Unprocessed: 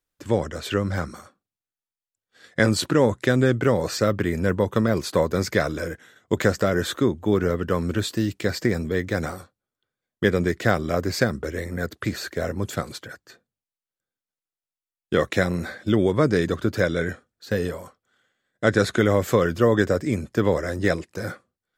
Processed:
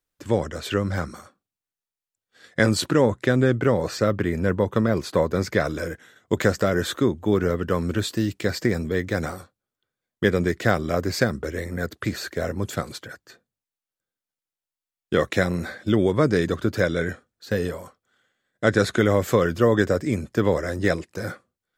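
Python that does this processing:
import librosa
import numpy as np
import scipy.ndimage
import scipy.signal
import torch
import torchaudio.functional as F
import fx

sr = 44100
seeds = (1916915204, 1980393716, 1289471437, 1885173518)

y = fx.high_shelf(x, sr, hz=3900.0, db=-6.0, at=(3.01, 5.65))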